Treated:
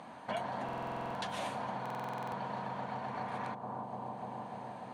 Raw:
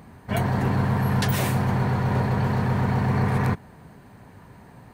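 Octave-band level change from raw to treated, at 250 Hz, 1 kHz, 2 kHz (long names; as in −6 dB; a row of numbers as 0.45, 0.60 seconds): −19.0, −7.5, −13.5 decibels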